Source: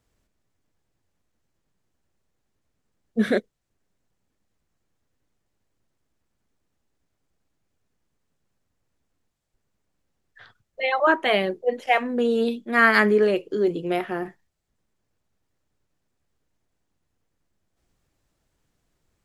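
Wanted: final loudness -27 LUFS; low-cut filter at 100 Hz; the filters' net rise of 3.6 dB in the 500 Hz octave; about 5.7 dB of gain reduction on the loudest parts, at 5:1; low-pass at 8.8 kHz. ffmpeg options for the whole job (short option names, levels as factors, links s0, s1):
-af "highpass=100,lowpass=8800,equalizer=f=500:t=o:g=4.5,acompressor=threshold=0.126:ratio=5,volume=0.708"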